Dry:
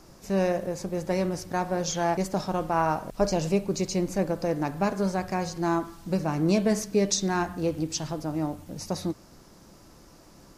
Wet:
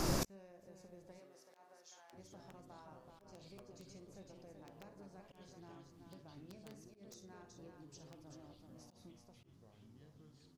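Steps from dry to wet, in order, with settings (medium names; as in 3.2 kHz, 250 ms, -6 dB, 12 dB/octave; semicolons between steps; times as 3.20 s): compression 12:1, threshold -29 dBFS, peak gain reduction 12 dB; ever faster or slower copies 781 ms, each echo -6 st, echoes 2, each echo -6 dB; multi-tap echo 51/54/65/381 ms -11.5/-20/-13.5/-5.5 dB; integer overflow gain 20 dB; inverted gate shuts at -34 dBFS, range -42 dB; slow attack 103 ms; 1.18–2.12 s: high-pass 370 Hz -> 990 Hz 12 dB/octave; trim +16.5 dB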